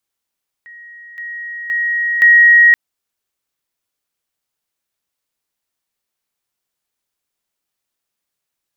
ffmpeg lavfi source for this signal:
ffmpeg -f lavfi -i "aevalsrc='pow(10,(-34.5+10*floor(t/0.52))/20)*sin(2*PI*1890*t)':duration=2.08:sample_rate=44100" out.wav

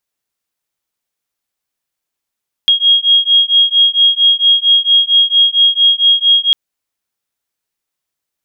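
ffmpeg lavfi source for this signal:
ffmpeg -f lavfi -i "aevalsrc='0.299*(sin(2*PI*3270*t)+sin(2*PI*3274.4*t))':duration=3.85:sample_rate=44100" out.wav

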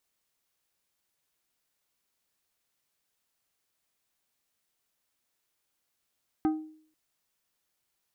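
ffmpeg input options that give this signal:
ffmpeg -f lavfi -i "aevalsrc='0.0944*pow(10,-3*t/0.55)*sin(2*PI*312*t)+0.0355*pow(10,-3*t/0.29)*sin(2*PI*780*t)+0.0133*pow(10,-3*t/0.208)*sin(2*PI*1248*t)+0.00501*pow(10,-3*t/0.178)*sin(2*PI*1560*t)+0.00188*pow(10,-3*t/0.148)*sin(2*PI*2028*t)':duration=0.49:sample_rate=44100" out.wav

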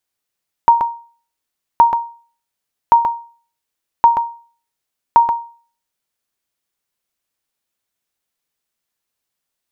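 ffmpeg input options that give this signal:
ffmpeg -f lavfi -i "aevalsrc='0.841*(sin(2*PI*934*mod(t,1.12))*exp(-6.91*mod(t,1.12)/0.42)+0.473*sin(2*PI*934*max(mod(t,1.12)-0.13,0))*exp(-6.91*max(mod(t,1.12)-0.13,0)/0.42))':duration=5.6:sample_rate=44100" out.wav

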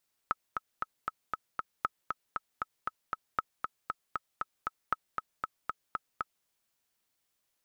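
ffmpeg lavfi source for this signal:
ffmpeg -f lavfi -i "aevalsrc='pow(10,(-14.5-4.5*gte(mod(t,6*60/234),60/234))/20)*sin(2*PI*1290*mod(t,60/234))*exp(-6.91*mod(t,60/234)/0.03)':duration=6.15:sample_rate=44100" out.wav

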